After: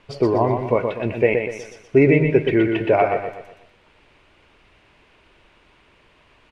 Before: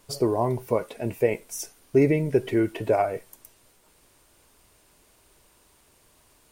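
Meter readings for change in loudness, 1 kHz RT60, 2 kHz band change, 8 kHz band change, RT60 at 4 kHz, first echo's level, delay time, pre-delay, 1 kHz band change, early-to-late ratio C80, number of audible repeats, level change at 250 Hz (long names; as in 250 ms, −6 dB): +6.0 dB, no reverb audible, +11.0 dB, below −10 dB, no reverb audible, −5.5 dB, 122 ms, no reverb audible, +6.5 dB, no reverb audible, 4, +6.0 dB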